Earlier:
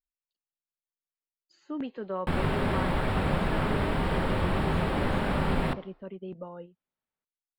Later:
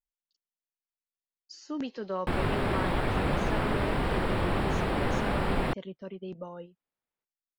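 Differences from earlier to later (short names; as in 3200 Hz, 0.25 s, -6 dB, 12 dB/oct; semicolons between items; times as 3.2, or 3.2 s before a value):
speech: remove running mean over 8 samples; reverb: off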